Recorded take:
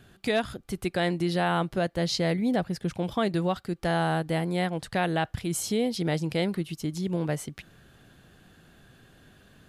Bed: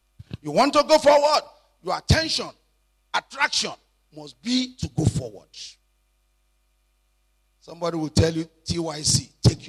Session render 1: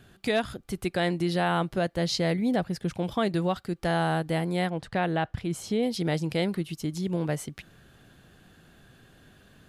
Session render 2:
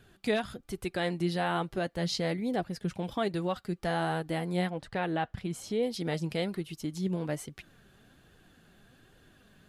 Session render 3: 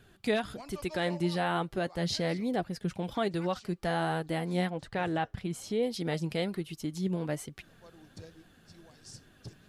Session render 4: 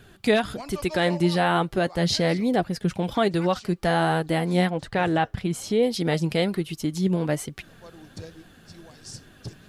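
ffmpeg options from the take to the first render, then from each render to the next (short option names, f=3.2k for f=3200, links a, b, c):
-filter_complex "[0:a]asettb=1/sr,asplit=3[a][b][c];[a]atrim=end=4.704[d];[b]atrim=start=4.7:end=5.83,asetpts=PTS-STARTPTS,afade=t=in:d=0.004:c=qsin,afade=t=out:st=1.126:d=0.004:c=qsin,lowpass=f=2.7k:p=1[e];[c]atrim=start=5.826[f];[d][e]acrossfade=d=0.004:c1=hsin:c2=qsin[g];[g][f]acrossfade=d=0.004:c1=qsin:c2=hsin"
-af "flanger=delay=1.9:depth=3.6:regen=54:speed=1.2:shape=triangular"
-filter_complex "[1:a]volume=-29.5dB[a];[0:a][a]amix=inputs=2:normalize=0"
-af "volume=8.5dB"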